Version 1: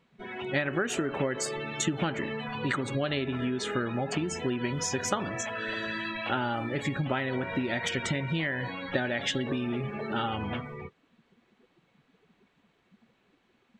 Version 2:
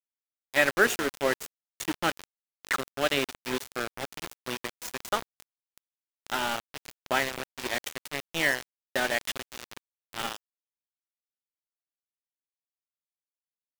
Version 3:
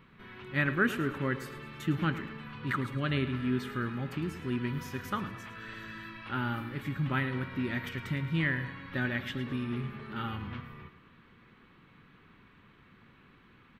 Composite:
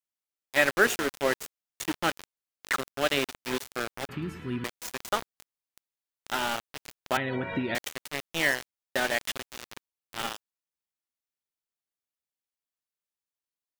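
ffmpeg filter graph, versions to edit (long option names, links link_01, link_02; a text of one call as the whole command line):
ffmpeg -i take0.wav -i take1.wav -i take2.wav -filter_complex "[1:a]asplit=3[link_01][link_02][link_03];[link_01]atrim=end=4.092[link_04];[2:a]atrim=start=4.088:end=4.642[link_05];[link_02]atrim=start=4.638:end=7.172[link_06];[0:a]atrim=start=7.168:end=7.752[link_07];[link_03]atrim=start=7.748[link_08];[link_04][link_05]acrossfade=duration=0.004:curve1=hsin:curve2=hsin[link_09];[link_09][link_06]acrossfade=duration=0.004:curve1=hsin:curve2=hsin[link_10];[link_10][link_07]acrossfade=duration=0.004:curve1=hsin:curve2=hsin[link_11];[link_11][link_08]acrossfade=duration=0.004:curve1=hsin:curve2=hsin" out.wav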